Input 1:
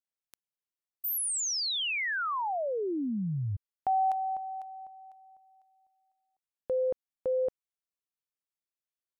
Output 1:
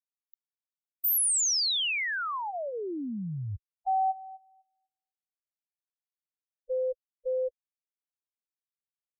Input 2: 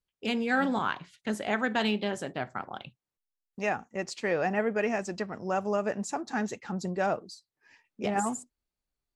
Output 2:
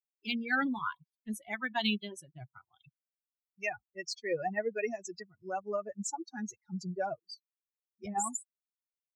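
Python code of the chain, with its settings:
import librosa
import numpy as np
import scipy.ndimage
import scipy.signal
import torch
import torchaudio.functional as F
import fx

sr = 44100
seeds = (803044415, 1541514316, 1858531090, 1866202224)

y = fx.bin_expand(x, sr, power=3.0)
y = fx.high_shelf(y, sr, hz=2600.0, db=8.0)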